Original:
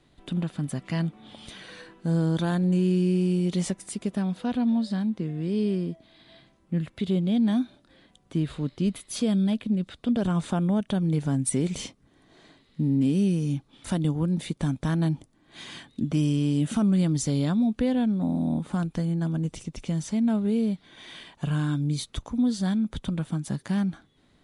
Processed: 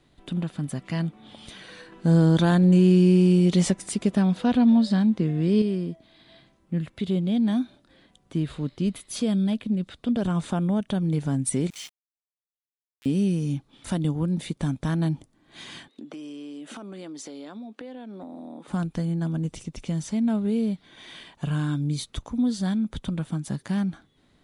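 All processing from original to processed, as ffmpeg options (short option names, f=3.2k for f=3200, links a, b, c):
-filter_complex "[0:a]asettb=1/sr,asplit=3[a][b][c];[a]atrim=end=1.924[d];[b]atrim=start=1.92:end=5.62,asetpts=PTS-STARTPTS,afade=t=in:d=0.004:c=qsin,afade=t=out:st=3.696:d=0.004:c=qsin,lowpass=9.7k,acontrast=58[e];[c]atrim=start=5.616[f];[d][e]acrossfade=d=0.004:c1=hsin:c2=qsin[g];[g][f]acrossfade=d=0.004:c1=qsin:c2=hsin,asettb=1/sr,asplit=3[h][i][j];[h]atrim=end=11.704[k];[i]atrim=start=11.7:end=13.06,asetpts=PTS-STARTPTS,afade=t=in:d=0.004:c=qsin,afade=t=out:st=1.356:d=0.004:c=qsin,highpass=f=1.4k:w=0.5412,highpass=f=1.4k:w=1.3066,highshelf=f=8k:g=-7,aeval=exprs='val(0)*gte(abs(val(0)),0.00708)':c=same[l];[j]atrim=start=13.056[m];[k][l]acrossfade=d=0.004:c1=hsin:c2=qsin[n];[n][m]acrossfade=d=0.004:c1=qsin:c2=hsin,asettb=1/sr,asplit=3[o][p][q];[o]atrim=end=15.884[r];[p]atrim=start=15.88:end=18.68,asetpts=PTS-STARTPTS,afade=t=in:d=0.004:c=qsin,afade=t=out:st=2.796:d=0.004:c=qsin,highpass=f=300:w=0.5412,highpass=f=300:w=1.3066,highshelf=f=6.9k:g=-12,acompressor=threshold=-35dB:ratio=12:attack=3.2:release=140:knee=1:detection=peak[s];[q]atrim=start=18.676[t];[r][s]acrossfade=d=0.004:c1=hsin:c2=qsin[u];[u][t]acrossfade=d=0.004:c1=qsin:c2=hsin"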